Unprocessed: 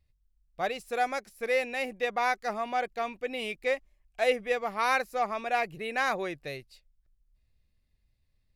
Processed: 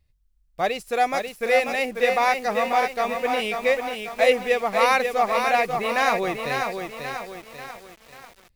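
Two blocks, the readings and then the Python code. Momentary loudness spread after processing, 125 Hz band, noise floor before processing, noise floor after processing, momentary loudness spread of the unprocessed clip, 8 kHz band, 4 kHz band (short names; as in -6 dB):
12 LU, +8.5 dB, -73 dBFS, -63 dBFS, 7 LU, +9.5 dB, +8.5 dB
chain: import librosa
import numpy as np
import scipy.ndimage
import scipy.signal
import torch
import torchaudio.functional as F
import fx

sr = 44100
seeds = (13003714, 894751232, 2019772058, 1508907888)

p1 = fx.dynamic_eq(x, sr, hz=1500.0, q=6.3, threshold_db=-46.0, ratio=4.0, max_db=-6)
p2 = fx.quant_dither(p1, sr, seeds[0], bits=8, dither='none')
p3 = p1 + (p2 * 10.0 ** (-8.5 / 20.0))
p4 = fx.echo_crushed(p3, sr, ms=540, feedback_pct=55, bits=8, wet_db=-5.0)
y = p4 * 10.0 ** (4.5 / 20.0)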